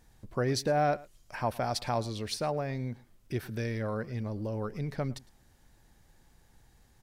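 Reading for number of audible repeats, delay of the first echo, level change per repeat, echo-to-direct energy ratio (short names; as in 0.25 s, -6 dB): 1, 0.108 s, no steady repeat, -21.5 dB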